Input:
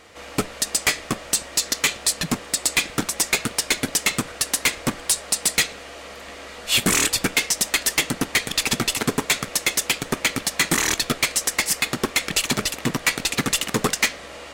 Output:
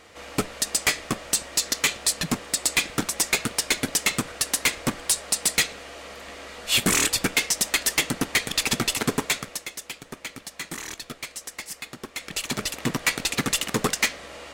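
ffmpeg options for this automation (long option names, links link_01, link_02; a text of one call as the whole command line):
ffmpeg -i in.wav -af "volume=10dB,afade=type=out:start_time=9.17:duration=0.51:silence=0.237137,afade=type=in:start_time=12.11:duration=0.76:silence=0.251189" out.wav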